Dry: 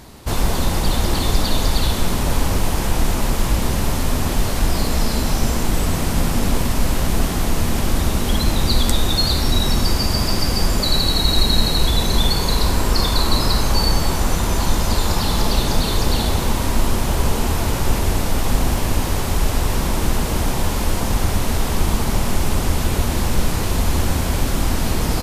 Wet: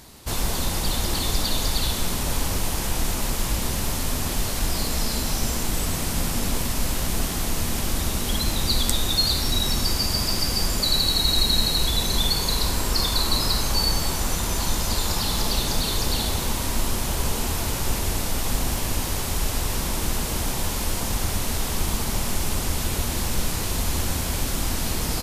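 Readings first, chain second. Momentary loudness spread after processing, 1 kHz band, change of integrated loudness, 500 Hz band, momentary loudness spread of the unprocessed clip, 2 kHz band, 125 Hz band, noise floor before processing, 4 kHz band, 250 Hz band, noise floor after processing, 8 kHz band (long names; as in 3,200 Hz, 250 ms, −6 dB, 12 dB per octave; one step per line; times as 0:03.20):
5 LU, −6.5 dB, −4.0 dB, −7.0 dB, 4 LU, −4.5 dB, −7.5 dB, −21 dBFS, −1.5 dB, −7.5 dB, −27 dBFS, 0.0 dB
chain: high-shelf EQ 2,600 Hz +8.5 dB
level −7.5 dB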